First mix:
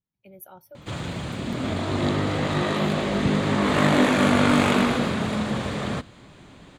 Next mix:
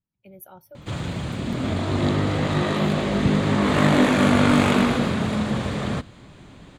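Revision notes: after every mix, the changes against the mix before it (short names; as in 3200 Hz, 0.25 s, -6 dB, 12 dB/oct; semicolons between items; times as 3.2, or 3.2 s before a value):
master: add low shelf 200 Hz +5 dB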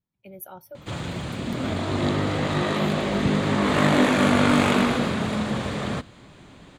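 speech +4.5 dB; master: add low shelf 200 Hz -5 dB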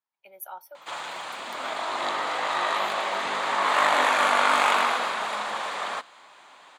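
master: add resonant high-pass 900 Hz, resonance Q 1.9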